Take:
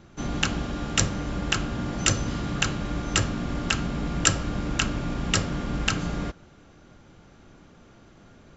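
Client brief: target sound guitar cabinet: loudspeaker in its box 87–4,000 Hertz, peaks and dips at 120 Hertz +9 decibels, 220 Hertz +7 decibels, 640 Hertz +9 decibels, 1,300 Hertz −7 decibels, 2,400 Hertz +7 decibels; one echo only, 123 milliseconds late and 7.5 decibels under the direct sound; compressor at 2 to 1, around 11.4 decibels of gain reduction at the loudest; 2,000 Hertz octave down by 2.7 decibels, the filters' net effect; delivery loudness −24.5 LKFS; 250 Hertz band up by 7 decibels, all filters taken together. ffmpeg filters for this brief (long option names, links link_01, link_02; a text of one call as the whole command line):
ffmpeg -i in.wav -af "equalizer=frequency=250:width_type=o:gain=4,equalizer=frequency=2000:width_type=o:gain=-7,acompressor=threshold=-38dB:ratio=2,highpass=87,equalizer=frequency=120:width_type=q:width=4:gain=9,equalizer=frequency=220:width_type=q:width=4:gain=7,equalizer=frequency=640:width_type=q:width=4:gain=9,equalizer=frequency=1300:width_type=q:width=4:gain=-7,equalizer=frequency=2400:width_type=q:width=4:gain=7,lowpass=frequency=4000:width=0.5412,lowpass=frequency=4000:width=1.3066,aecho=1:1:123:0.422,volume=8.5dB" out.wav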